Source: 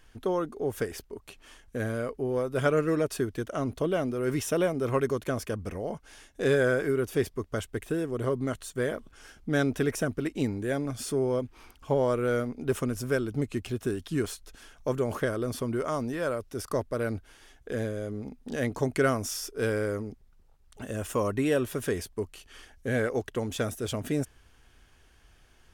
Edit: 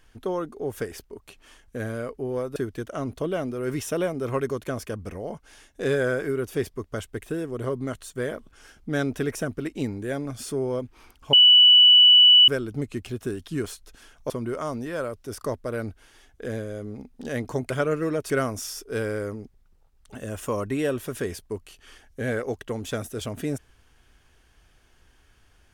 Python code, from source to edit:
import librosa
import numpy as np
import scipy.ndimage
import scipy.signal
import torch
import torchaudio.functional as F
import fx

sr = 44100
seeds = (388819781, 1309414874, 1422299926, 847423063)

y = fx.edit(x, sr, fx.move(start_s=2.56, length_s=0.6, to_s=18.97),
    fx.bleep(start_s=11.93, length_s=1.15, hz=2960.0, db=-10.0),
    fx.cut(start_s=14.9, length_s=0.67), tone=tone)